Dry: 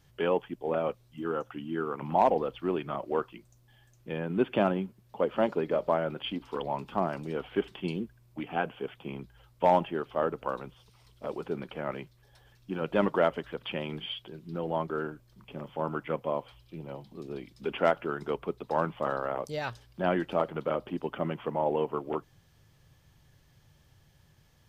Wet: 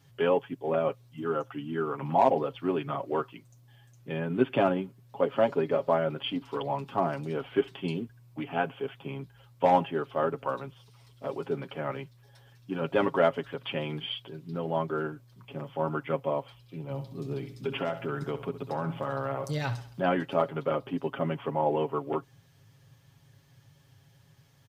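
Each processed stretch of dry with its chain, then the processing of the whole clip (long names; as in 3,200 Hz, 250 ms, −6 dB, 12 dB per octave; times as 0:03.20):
0:16.90–0:20.00: bass and treble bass +7 dB, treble +4 dB + downward compressor, threshold −28 dBFS + repeating echo 66 ms, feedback 44%, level −12.5 dB
whole clip: high-pass filter 72 Hz; parametric band 110 Hz +4 dB 0.44 octaves; comb filter 7.3 ms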